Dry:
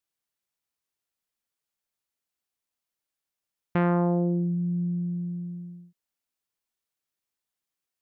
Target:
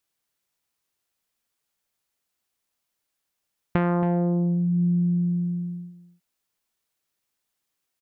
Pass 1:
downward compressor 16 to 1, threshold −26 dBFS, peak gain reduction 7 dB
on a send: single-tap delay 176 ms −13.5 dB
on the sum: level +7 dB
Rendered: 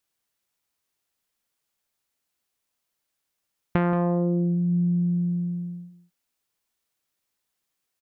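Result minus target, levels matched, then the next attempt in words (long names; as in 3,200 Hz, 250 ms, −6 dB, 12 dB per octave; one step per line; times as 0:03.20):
echo 98 ms early
downward compressor 16 to 1, threshold −26 dBFS, peak gain reduction 7 dB
on a send: single-tap delay 274 ms −13.5 dB
on the sum: level +7 dB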